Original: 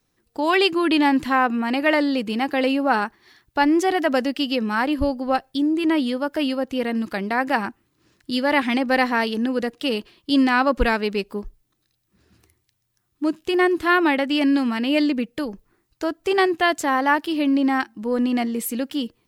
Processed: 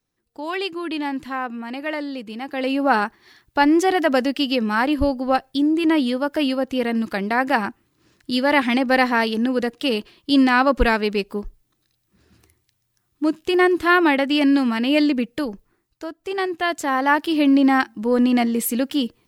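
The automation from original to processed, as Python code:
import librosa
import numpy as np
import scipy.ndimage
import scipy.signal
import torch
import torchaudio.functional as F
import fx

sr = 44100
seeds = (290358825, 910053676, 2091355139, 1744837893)

y = fx.gain(x, sr, db=fx.line((2.43, -8.0), (2.85, 2.0), (15.48, 2.0), (16.13, -8.0), (17.41, 4.0)))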